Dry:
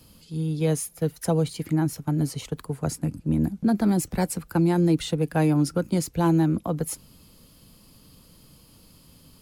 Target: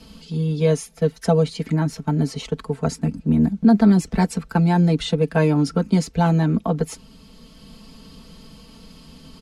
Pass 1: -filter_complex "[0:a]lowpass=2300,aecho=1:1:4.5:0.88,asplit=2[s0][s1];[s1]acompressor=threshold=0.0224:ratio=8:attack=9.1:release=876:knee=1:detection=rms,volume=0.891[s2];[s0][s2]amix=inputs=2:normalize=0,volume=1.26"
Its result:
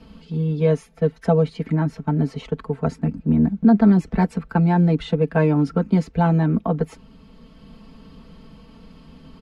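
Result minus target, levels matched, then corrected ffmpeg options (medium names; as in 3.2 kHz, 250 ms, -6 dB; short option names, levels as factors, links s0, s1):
8 kHz band -15.0 dB
-filter_complex "[0:a]lowpass=5700,aecho=1:1:4.5:0.88,asplit=2[s0][s1];[s1]acompressor=threshold=0.0224:ratio=8:attack=9.1:release=876:knee=1:detection=rms,volume=0.891[s2];[s0][s2]amix=inputs=2:normalize=0,volume=1.26"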